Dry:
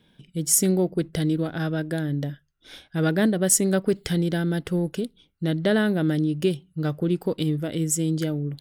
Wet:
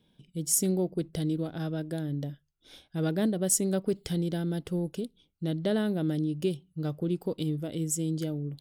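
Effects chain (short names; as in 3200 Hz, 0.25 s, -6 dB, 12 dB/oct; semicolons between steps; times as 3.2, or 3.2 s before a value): bell 1700 Hz -8 dB 0.97 oct; gain -6 dB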